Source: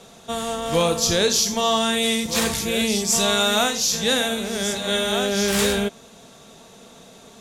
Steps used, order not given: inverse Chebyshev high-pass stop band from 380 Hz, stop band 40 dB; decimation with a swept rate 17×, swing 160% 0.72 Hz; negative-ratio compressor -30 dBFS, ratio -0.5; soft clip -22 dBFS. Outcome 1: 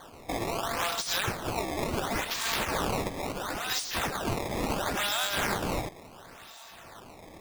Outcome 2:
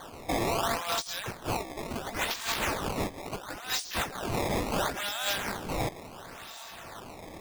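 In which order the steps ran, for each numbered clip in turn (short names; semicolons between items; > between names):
soft clip > inverse Chebyshev high-pass > negative-ratio compressor > decimation with a swept rate; inverse Chebyshev high-pass > decimation with a swept rate > negative-ratio compressor > soft clip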